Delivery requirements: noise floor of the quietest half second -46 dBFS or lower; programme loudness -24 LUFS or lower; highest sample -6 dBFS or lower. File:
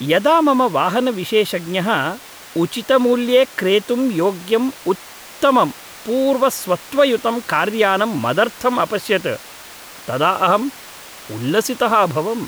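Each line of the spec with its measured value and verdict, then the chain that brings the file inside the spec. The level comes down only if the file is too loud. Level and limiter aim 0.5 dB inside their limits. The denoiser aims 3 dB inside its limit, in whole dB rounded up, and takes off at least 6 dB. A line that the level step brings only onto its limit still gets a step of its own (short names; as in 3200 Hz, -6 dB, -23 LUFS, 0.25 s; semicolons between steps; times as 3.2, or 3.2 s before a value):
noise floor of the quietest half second -38 dBFS: fail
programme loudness -17.5 LUFS: fail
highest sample -3.0 dBFS: fail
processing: denoiser 6 dB, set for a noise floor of -38 dBFS; gain -7 dB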